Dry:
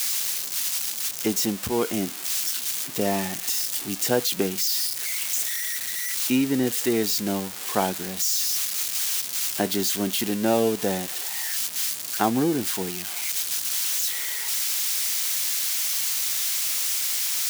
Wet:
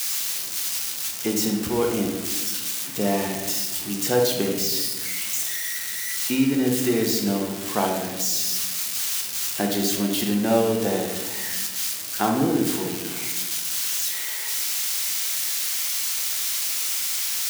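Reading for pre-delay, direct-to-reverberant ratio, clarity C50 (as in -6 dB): 14 ms, 1.0 dB, 4.0 dB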